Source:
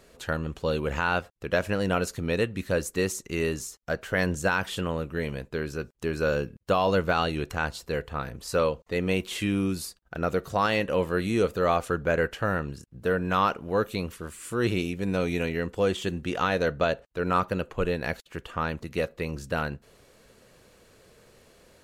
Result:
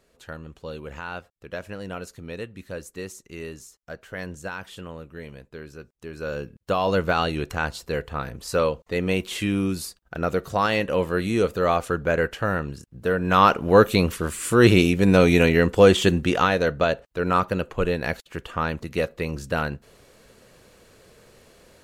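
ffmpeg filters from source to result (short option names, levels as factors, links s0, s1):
-af "volume=3.55,afade=t=in:st=6.1:d=0.96:silence=0.281838,afade=t=in:st=13.18:d=0.49:silence=0.375837,afade=t=out:st=16.08:d=0.48:silence=0.421697"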